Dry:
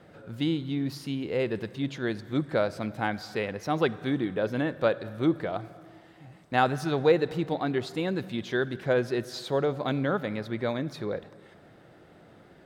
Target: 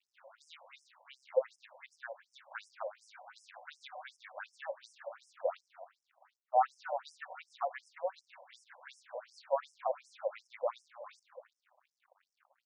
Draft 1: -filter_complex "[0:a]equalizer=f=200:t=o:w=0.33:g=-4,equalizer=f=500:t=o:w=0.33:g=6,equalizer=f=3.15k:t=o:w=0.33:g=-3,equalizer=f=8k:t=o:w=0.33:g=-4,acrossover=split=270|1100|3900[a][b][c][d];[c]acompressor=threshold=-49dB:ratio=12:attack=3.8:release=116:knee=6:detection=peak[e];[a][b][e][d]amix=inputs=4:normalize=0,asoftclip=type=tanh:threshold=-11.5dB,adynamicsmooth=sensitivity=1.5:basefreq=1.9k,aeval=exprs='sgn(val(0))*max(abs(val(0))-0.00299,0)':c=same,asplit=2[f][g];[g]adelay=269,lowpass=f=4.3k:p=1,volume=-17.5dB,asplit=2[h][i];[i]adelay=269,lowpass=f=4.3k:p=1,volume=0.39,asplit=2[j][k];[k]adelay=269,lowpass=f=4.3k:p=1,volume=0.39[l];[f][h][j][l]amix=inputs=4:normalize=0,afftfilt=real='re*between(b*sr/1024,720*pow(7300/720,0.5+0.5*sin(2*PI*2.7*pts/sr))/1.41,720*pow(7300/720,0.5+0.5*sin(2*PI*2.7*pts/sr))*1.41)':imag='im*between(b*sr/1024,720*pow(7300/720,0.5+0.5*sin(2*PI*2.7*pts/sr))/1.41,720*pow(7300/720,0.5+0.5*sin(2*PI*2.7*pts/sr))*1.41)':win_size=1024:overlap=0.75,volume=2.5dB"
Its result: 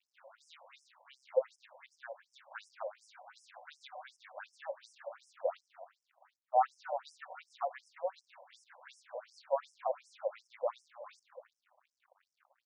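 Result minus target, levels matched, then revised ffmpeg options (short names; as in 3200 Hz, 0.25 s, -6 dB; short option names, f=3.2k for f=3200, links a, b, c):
compressor: peak gain reduction +8 dB
-filter_complex "[0:a]equalizer=f=200:t=o:w=0.33:g=-4,equalizer=f=500:t=o:w=0.33:g=6,equalizer=f=3.15k:t=o:w=0.33:g=-3,equalizer=f=8k:t=o:w=0.33:g=-4,acrossover=split=270|1100|3900[a][b][c][d];[c]acompressor=threshold=-40.5dB:ratio=12:attack=3.8:release=116:knee=6:detection=peak[e];[a][b][e][d]amix=inputs=4:normalize=0,asoftclip=type=tanh:threshold=-11.5dB,adynamicsmooth=sensitivity=1.5:basefreq=1.9k,aeval=exprs='sgn(val(0))*max(abs(val(0))-0.00299,0)':c=same,asplit=2[f][g];[g]adelay=269,lowpass=f=4.3k:p=1,volume=-17.5dB,asplit=2[h][i];[i]adelay=269,lowpass=f=4.3k:p=1,volume=0.39,asplit=2[j][k];[k]adelay=269,lowpass=f=4.3k:p=1,volume=0.39[l];[f][h][j][l]amix=inputs=4:normalize=0,afftfilt=real='re*between(b*sr/1024,720*pow(7300/720,0.5+0.5*sin(2*PI*2.7*pts/sr))/1.41,720*pow(7300/720,0.5+0.5*sin(2*PI*2.7*pts/sr))*1.41)':imag='im*between(b*sr/1024,720*pow(7300/720,0.5+0.5*sin(2*PI*2.7*pts/sr))/1.41,720*pow(7300/720,0.5+0.5*sin(2*PI*2.7*pts/sr))*1.41)':win_size=1024:overlap=0.75,volume=2.5dB"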